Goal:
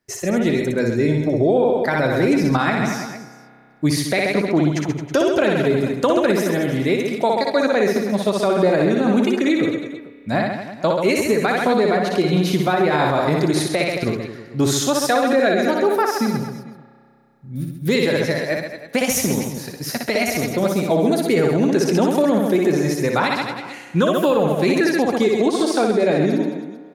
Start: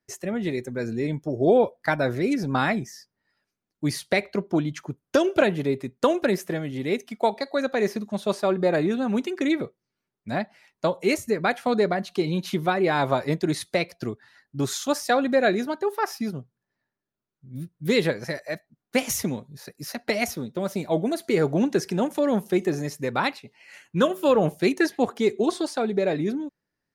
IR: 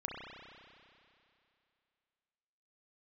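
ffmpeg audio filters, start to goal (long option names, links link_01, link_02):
-filter_complex "[0:a]aecho=1:1:60|132|218.4|322.1|446.5:0.631|0.398|0.251|0.158|0.1,asplit=2[link_01][link_02];[1:a]atrim=start_sample=2205[link_03];[link_02][link_03]afir=irnorm=-1:irlink=0,volume=-18dB[link_04];[link_01][link_04]amix=inputs=2:normalize=0,alimiter=limit=-14.5dB:level=0:latency=1:release=104,volume=6.5dB"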